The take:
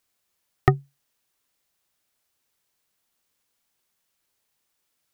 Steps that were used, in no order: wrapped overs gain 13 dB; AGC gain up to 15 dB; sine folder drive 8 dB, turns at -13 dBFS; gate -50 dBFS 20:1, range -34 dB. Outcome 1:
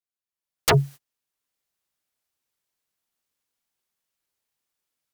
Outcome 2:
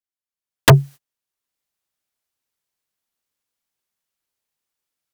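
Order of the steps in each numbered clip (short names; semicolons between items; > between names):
wrapped overs > gate > AGC > sine folder; wrapped overs > gate > sine folder > AGC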